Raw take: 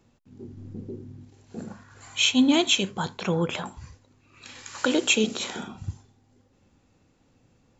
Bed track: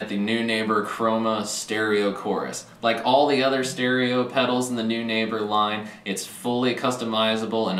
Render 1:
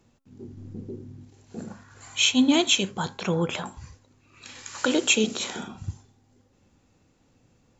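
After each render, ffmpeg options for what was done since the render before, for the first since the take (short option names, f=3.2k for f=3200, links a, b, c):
-af "equalizer=f=6.7k:w=1.5:g=2.5,bandreject=f=269.7:t=h:w=4,bandreject=f=539.4:t=h:w=4,bandreject=f=809.1:t=h:w=4,bandreject=f=1.0788k:t=h:w=4,bandreject=f=1.3485k:t=h:w=4,bandreject=f=1.6182k:t=h:w=4"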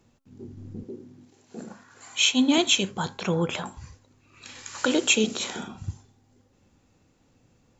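-filter_complex "[0:a]asettb=1/sr,asplit=3[a][b][c];[a]atrim=end=0.834[d];[b]atrim=start=0.83:end=2.58,asetpts=PTS-STARTPTS,afade=t=in:d=0.004:c=qsin,afade=t=out:st=1.746:d=0.004:c=qsin,highpass=210[e];[c]atrim=start=2.576[f];[d][e]acrossfade=d=0.004:c1=hsin:c2=qsin[g];[g][f]acrossfade=d=0.004:c1=qsin:c2=hsin"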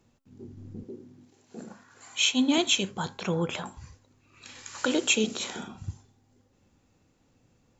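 -af "volume=-3dB"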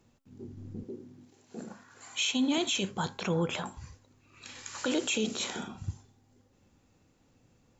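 -af "alimiter=limit=-20.5dB:level=0:latency=1:release=13"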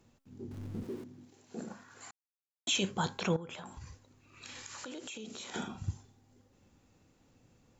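-filter_complex "[0:a]asettb=1/sr,asplit=3[a][b][c];[a]atrim=end=0.514[d];[b]atrim=start=0.51:end=1.04,asetpts=PTS-STARTPTS,afade=t=in:d=0.004:c=qsin,afade=t=out:st=0.526:d=0.004:c=qsin,aeval=exprs='val(0)+0.5*0.00422*sgn(val(0))':c=same[e];[c]atrim=start=1.036[f];[d][e]acrossfade=d=0.004:c1=hsin:c2=qsin[g];[g][f]acrossfade=d=0.004:c1=qsin:c2=hsin,asettb=1/sr,asplit=3[h][i][j];[h]atrim=end=3.364[k];[i]atrim=start=3.36:end=5.54,asetpts=PTS-STARTPTS,afade=t=in:d=0.004:c=qsin,afade=t=out:st=2.176:d=0.004:c=qsin,acompressor=threshold=-42dB:ratio=6:attack=3.2:release=140:knee=1:detection=peak[l];[j]atrim=start=5.536[m];[k][l]acrossfade=d=0.004:c1=hsin:c2=qsin[n];[n][m]acrossfade=d=0.004:c1=qsin:c2=hsin,asplit=3[o][p][q];[o]atrim=end=2.11,asetpts=PTS-STARTPTS,afade=t=out:st=2.106:d=0.004:c=hsin[r];[p]atrim=start=2.11:end=2.67,asetpts=PTS-STARTPTS,volume=0[s];[q]atrim=start=2.67,asetpts=PTS-STARTPTS,afade=t=in:d=0.004:c=hsin[t];[r][s][t]concat=n=3:v=0:a=1"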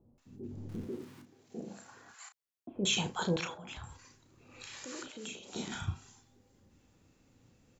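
-filter_complex "[0:a]asplit=2[a][b];[b]adelay=34,volume=-8.5dB[c];[a][c]amix=inputs=2:normalize=0,acrossover=split=790[d][e];[e]adelay=180[f];[d][f]amix=inputs=2:normalize=0"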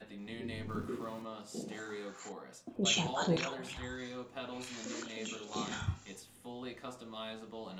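-filter_complex "[1:a]volume=-22dB[a];[0:a][a]amix=inputs=2:normalize=0"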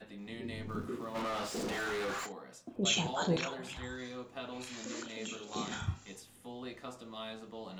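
-filter_complex "[0:a]asplit=3[a][b][c];[a]afade=t=out:st=1.14:d=0.02[d];[b]asplit=2[e][f];[f]highpass=f=720:p=1,volume=35dB,asoftclip=type=tanh:threshold=-29dB[g];[e][g]amix=inputs=2:normalize=0,lowpass=f=2.6k:p=1,volume=-6dB,afade=t=in:st=1.14:d=0.02,afade=t=out:st=2.25:d=0.02[h];[c]afade=t=in:st=2.25:d=0.02[i];[d][h][i]amix=inputs=3:normalize=0"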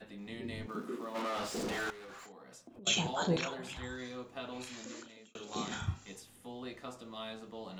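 -filter_complex "[0:a]asettb=1/sr,asplit=3[a][b][c];[a]atrim=end=0.664[d];[b]atrim=start=0.66:end=1.37,asetpts=PTS-STARTPTS,afade=t=in:d=0.004:c=qsin,afade=t=out:st=0.706:d=0.004:c=qsin,highpass=f=200:w=0.5412,highpass=f=200:w=1.3066[e];[c]atrim=start=1.366[f];[d][e]acrossfade=d=0.004:c1=hsin:c2=qsin[g];[g][f]acrossfade=d=0.004:c1=qsin:c2=hsin,asettb=1/sr,asplit=3[h][i][j];[h]atrim=end=1.904[k];[i]atrim=start=1.9:end=2.87,asetpts=PTS-STARTPTS,afade=t=in:d=0.004:c=qsin,afade=t=out:st=0.966:d=0.004:c=qsin,acompressor=threshold=-49dB:ratio=8:attack=3.2:release=140:knee=1:detection=peak[l];[j]atrim=start=2.866[m];[k][l]acrossfade=d=0.004:c1=hsin:c2=qsin[n];[n][m]acrossfade=d=0.004:c1=qsin:c2=hsin,asplit=2[o][p];[o]atrim=end=5.35,asetpts=PTS-STARTPTS,afade=t=out:st=4.61:d=0.74[q];[p]atrim=start=5.35,asetpts=PTS-STARTPTS,afade=t=in:d=0.004:c=hsin[r];[q][r]concat=n=2:v=0:a=1"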